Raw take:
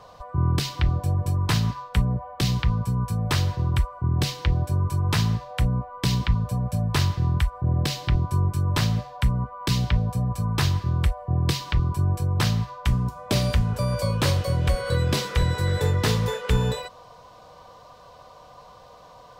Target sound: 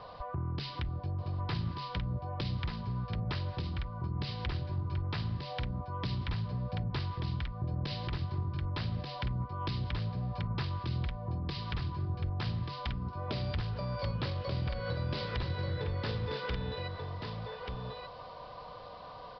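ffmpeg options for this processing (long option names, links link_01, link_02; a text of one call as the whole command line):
ffmpeg -i in.wav -af "acompressor=threshold=-33dB:ratio=4,aresample=11025,asoftclip=type=tanh:threshold=-28dB,aresample=44100,aecho=1:1:1185:0.562" out.wav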